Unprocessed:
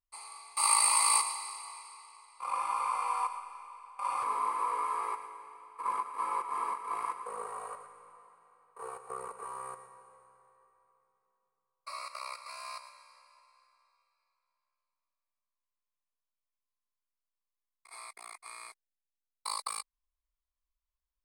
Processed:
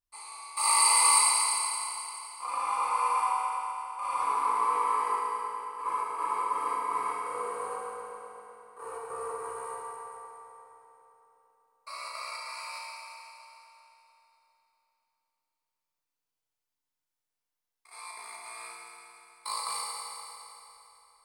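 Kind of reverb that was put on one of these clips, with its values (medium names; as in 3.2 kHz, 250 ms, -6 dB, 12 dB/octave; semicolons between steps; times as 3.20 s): FDN reverb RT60 3.3 s, high-frequency decay 0.85×, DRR -5.5 dB; trim -1.5 dB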